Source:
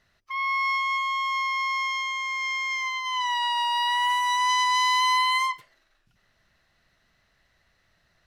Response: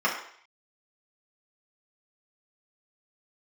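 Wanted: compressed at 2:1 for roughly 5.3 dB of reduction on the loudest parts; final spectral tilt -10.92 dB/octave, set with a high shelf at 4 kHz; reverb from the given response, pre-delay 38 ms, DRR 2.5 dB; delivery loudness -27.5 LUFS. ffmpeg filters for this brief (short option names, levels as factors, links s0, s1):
-filter_complex "[0:a]highshelf=f=4000:g=-7,acompressor=threshold=0.0316:ratio=2,asplit=2[s0][s1];[1:a]atrim=start_sample=2205,adelay=38[s2];[s1][s2]afir=irnorm=-1:irlink=0,volume=0.141[s3];[s0][s3]amix=inputs=2:normalize=0"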